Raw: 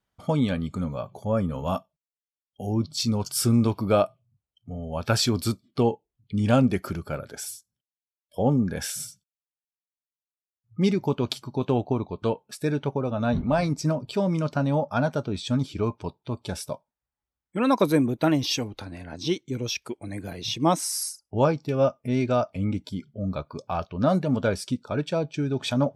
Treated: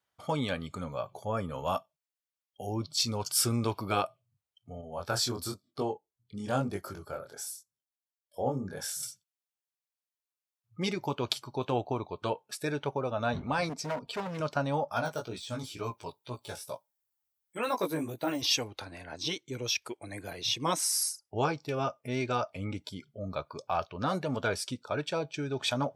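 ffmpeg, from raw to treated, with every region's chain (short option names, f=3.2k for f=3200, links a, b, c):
-filter_complex "[0:a]asettb=1/sr,asplit=3[a][b][c];[a]atrim=end=4.814[d];[b]atrim=start=4.81:end=9.03,asetpts=PTS-STARTPTS,afade=t=in:d=0.004:c=qsin,afade=t=out:st=4.216:d=0.004:c=qsin,equalizer=f=2.5k:t=o:w=0.95:g=-10.5,flanger=delay=20:depth=4.6:speed=1[e];[c]atrim=start=9.026[f];[d][e]acrossfade=d=0.004:c1=hsin:c2=qsin[g];[g][f]acrossfade=d=0.004:c1=qsin:c2=hsin,asettb=1/sr,asplit=3[h][i][j];[h]atrim=end=13.694[k];[i]atrim=start=13.69:end=14.4,asetpts=PTS-STARTPTS,afade=t=in:d=0.004:c=qsin,afade=t=out:st=0.706:d=0.004:c=qsin,highshelf=f=4.2k:g=-6.5,aecho=1:1:4.3:0.6,atrim=end_sample=31311,asoftclip=type=hard:threshold=-26dB[l];[j]atrim=start=14.396[m];[k][l]acrossfade=d=0.004:c1=hsin:c2=qsin[n];[n][m]acrossfade=d=0.004:c1=qsin:c2=hsin,asettb=1/sr,asplit=3[o][p][q];[o]atrim=end=14.924[r];[p]atrim=start=14.92:end=18.42,asetpts=PTS-STARTPTS,afade=t=in:d=0.004:c=qsin,afade=t=out:st=3.496:d=0.004:c=qsin,aemphasis=mode=production:type=50fm,deesser=0.9,flanger=delay=16:depth=3:speed=2.1[s];[q]atrim=start=18.416[t];[r][s]acrossfade=d=0.004:c1=hsin:c2=qsin[u];[u][t]acrossfade=d=0.004:c1=qsin:c2=hsin,highpass=120,equalizer=f=210:w=0.92:g=-12,afftfilt=real='re*lt(hypot(re,im),0.398)':imag='im*lt(hypot(re,im),0.398)':win_size=1024:overlap=0.75"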